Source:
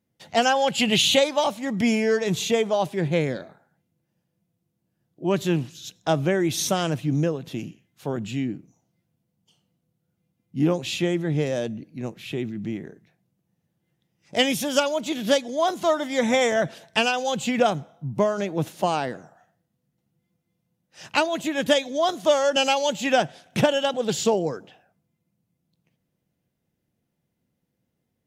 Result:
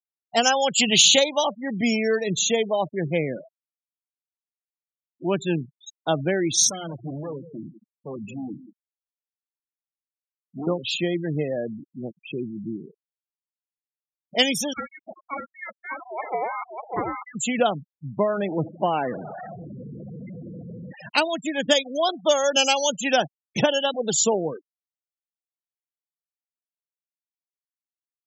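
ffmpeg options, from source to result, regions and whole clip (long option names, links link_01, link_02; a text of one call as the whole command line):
ffmpeg -i in.wav -filter_complex "[0:a]asettb=1/sr,asplit=3[link_01][link_02][link_03];[link_01]atrim=end=6.704[link_04];[link_02]atrim=start=6.7:end=10.67,asetpts=PTS-STARTPTS,afade=type=in:duration=0.004:curve=qsin,afade=type=out:start_time=3.966:duration=0.004:curve=qsin,volume=28dB,asoftclip=hard,volume=-28dB,bandreject=frequency=60:width_type=h:width=6,bandreject=frequency=120:width_type=h:width=6,bandreject=frequency=180:width_type=h:width=6,bandreject=frequency=240:width_type=h:width=6,aecho=1:1:177:0.251,atrim=end_sample=175077[link_05];[link_03]atrim=start=10.666[link_06];[link_04][link_05]acrossfade=duration=0.004:curve1=hsin:curve2=qsin[link_07];[link_07][link_06]acrossfade=duration=0.004:curve1=qsin:curve2=hsin,asettb=1/sr,asplit=3[link_08][link_09][link_10];[link_08]atrim=end=14.734[link_11];[link_09]atrim=start=14.73:end=17.35,asetpts=PTS-STARTPTS,afade=type=in:duration=0.004:curve=qsin,afade=type=out:start_time=2.616:duration=0.004:curve=qsin,highpass=frequency=2200:width_type=q:width=1.8,aecho=1:1:596:0.631,atrim=end_sample=115542,lowpass=frequency=2400:width_type=q:width=0.5098,lowpass=frequency=2400:width_type=q:width=0.6013,lowpass=frequency=2400:width_type=q:width=0.9,lowpass=frequency=2400:width_type=q:width=2.563,afreqshift=-2800[link_12];[link_10]atrim=start=17.346[link_13];[link_11][link_12]acrossfade=duration=0.004:curve1=hsin:curve2=qsin[link_14];[link_14][link_13]acrossfade=duration=0.004:curve1=qsin:curve2=hsin,asettb=1/sr,asplit=3[link_15][link_16][link_17];[link_15]atrim=end=18.294[link_18];[link_16]atrim=start=18.29:end=21.09,asetpts=PTS-STARTPTS,afade=type=in:duration=0.004:curve=qsin,afade=type=out:start_time=2.796:duration=0.004:curve=qsin,aeval=exprs='val(0)+0.5*0.0447*sgn(val(0))':channel_layout=same,highshelf=frequency=3400:gain=-9[link_19];[link_17]atrim=start=21.086[link_20];[link_18][link_19]acrossfade=duration=0.004:curve1=hsin:curve2=qsin[link_21];[link_21][link_20]acrossfade=duration=0.004:curve1=qsin:curve2=hsin,afftfilt=real='re*gte(hypot(re,im),0.0501)':imag='im*gte(hypot(re,im),0.0501)':win_size=1024:overlap=0.75,highpass=140,equalizer=frequency=7000:width_type=o:width=1.6:gain=12,volume=-1dB" out.wav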